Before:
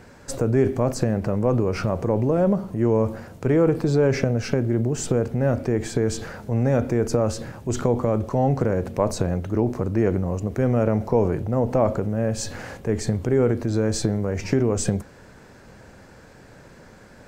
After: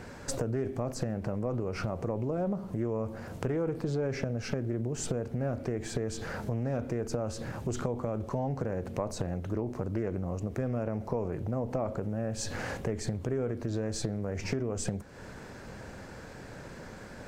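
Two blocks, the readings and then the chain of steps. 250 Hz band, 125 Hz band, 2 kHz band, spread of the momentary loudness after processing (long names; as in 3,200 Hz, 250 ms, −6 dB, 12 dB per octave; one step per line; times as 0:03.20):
−11.0 dB, −10.5 dB, −7.5 dB, 13 LU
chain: downward compressor 4 to 1, threshold −33 dBFS, peak gain reduction 16 dB
highs frequency-modulated by the lows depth 0.33 ms
level +2 dB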